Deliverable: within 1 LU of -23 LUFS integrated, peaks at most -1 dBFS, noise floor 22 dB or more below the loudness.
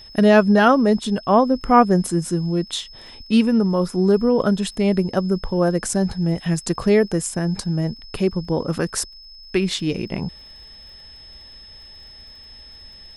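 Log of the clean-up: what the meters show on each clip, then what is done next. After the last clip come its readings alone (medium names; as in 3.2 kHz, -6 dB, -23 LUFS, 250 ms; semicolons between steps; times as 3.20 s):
tick rate 41 per s; steady tone 5.2 kHz; tone level -41 dBFS; loudness -19.5 LUFS; peak level -2.5 dBFS; loudness target -23.0 LUFS
-> de-click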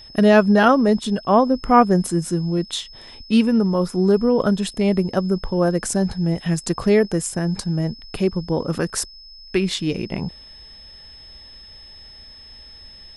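tick rate 0.076 per s; steady tone 5.2 kHz; tone level -41 dBFS
-> band-stop 5.2 kHz, Q 30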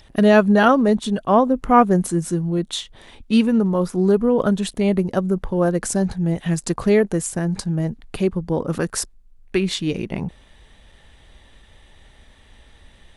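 steady tone not found; loudness -19.5 LUFS; peak level -2.5 dBFS; loudness target -23.0 LUFS
-> trim -3.5 dB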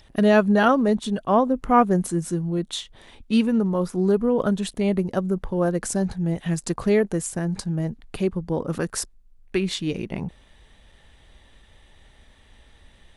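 loudness -23.0 LUFS; peak level -6.0 dBFS; noise floor -54 dBFS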